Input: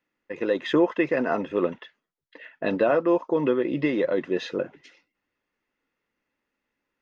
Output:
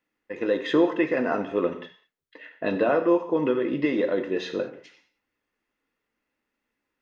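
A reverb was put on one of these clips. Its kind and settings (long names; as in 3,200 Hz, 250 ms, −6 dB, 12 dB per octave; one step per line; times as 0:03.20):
reverb whose tail is shaped and stops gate 230 ms falling, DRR 6.5 dB
level −1 dB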